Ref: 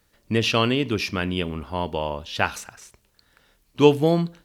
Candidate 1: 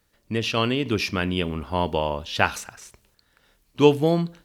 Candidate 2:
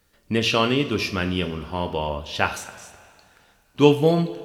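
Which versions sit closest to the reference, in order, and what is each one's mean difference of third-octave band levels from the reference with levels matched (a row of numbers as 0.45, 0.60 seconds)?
1, 2; 2.0, 3.0 decibels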